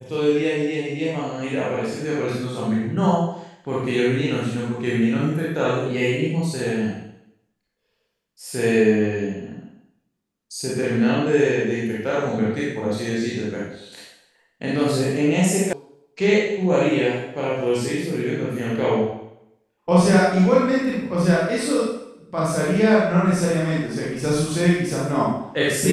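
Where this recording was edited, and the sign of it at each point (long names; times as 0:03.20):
0:15.73: cut off before it has died away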